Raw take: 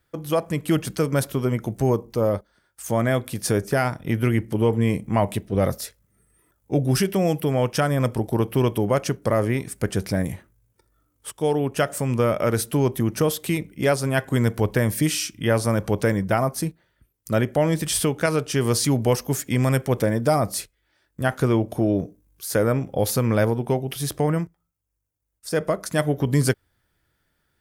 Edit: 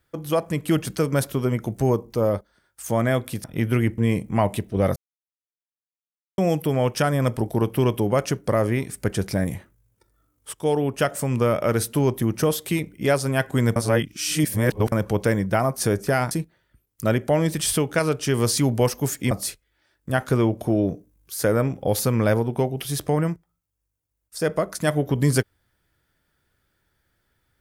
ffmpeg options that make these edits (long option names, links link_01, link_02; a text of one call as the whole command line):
ffmpeg -i in.wav -filter_complex "[0:a]asplit=10[link_01][link_02][link_03][link_04][link_05][link_06][link_07][link_08][link_09][link_10];[link_01]atrim=end=3.442[link_11];[link_02]atrim=start=3.948:end=4.492[link_12];[link_03]atrim=start=4.758:end=5.74,asetpts=PTS-STARTPTS,afade=type=out:start_time=0.978:duration=0.004:curve=hsin[link_13];[link_04]atrim=start=5.74:end=7.16,asetpts=PTS-STARTPTS,volume=0[link_14];[link_05]atrim=start=7.16:end=14.542,asetpts=PTS-STARTPTS,afade=type=in:duration=0.004:curve=hsin[link_15];[link_06]atrim=start=14.538:end=15.702,asetpts=PTS-STARTPTS,areverse[link_16];[link_07]atrim=start=15.698:end=16.582[link_17];[link_08]atrim=start=3.438:end=3.952[link_18];[link_09]atrim=start=16.578:end=19.582[link_19];[link_10]atrim=start=20.418[link_20];[link_11][link_12]acrossfade=duration=0.004:curve1=hsin:curve2=hsin[link_21];[link_13][link_14][link_15]concat=n=3:v=0:a=1[link_22];[link_21][link_22]acrossfade=duration=0.004:curve1=hsin:curve2=hsin[link_23];[link_23][link_16]acrossfade=duration=0.004:curve1=hsin:curve2=hsin[link_24];[link_24][link_17]acrossfade=duration=0.004:curve1=hsin:curve2=hsin[link_25];[link_25][link_18]acrossfade=duration=0.004:curve1=hsin:curve2=hsin[link_26];[link_26][link_19]acrossfade=duration=0.004:curve1=hsin:curve2=hsin[link_27];[link_27][link_20]acrossfade=duration=0.004:curve1=hsin:curve2=hsin" out.wav